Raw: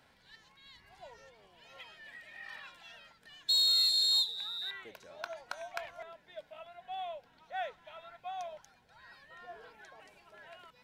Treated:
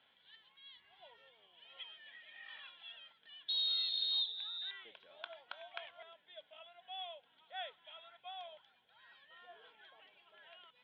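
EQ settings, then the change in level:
high-pass filter 450 Hz 6 dB per octave
low-pass with resonance 3,300 Hz, resonance Q 9.6
high-frequency loss of the air 270 metres
−7.0 dB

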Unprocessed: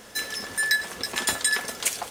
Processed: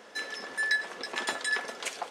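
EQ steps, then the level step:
high-pass filter 340 Hz 12 dB per octave
head-to-tape spacing loss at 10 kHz 23 dB
high-shelf EQ 6,200 Hz +6.5 dB
0.0 dB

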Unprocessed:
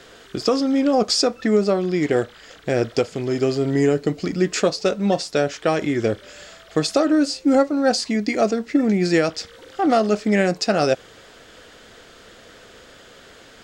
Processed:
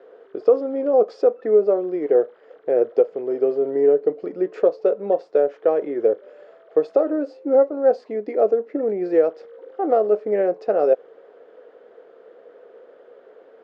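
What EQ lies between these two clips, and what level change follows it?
four-pole ladder band-pass 520 Hz, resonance 60%
+8.5 dB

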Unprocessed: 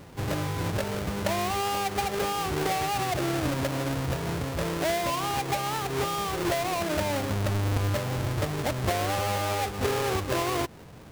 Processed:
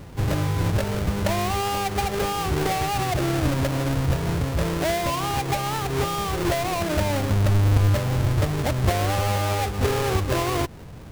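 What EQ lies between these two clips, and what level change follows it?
low-shelf EQ 110 Hz +11.5 dB
+2.5 dB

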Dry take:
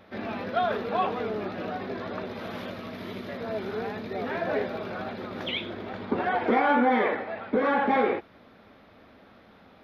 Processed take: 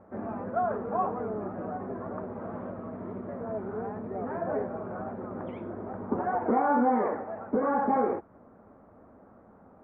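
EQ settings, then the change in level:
low-pass filter 1,200 Hz 24 dB per octave
dynamic equaliser 440 Hz, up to −3 dB, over −36 dBFS, Q 0.87
0.0 dB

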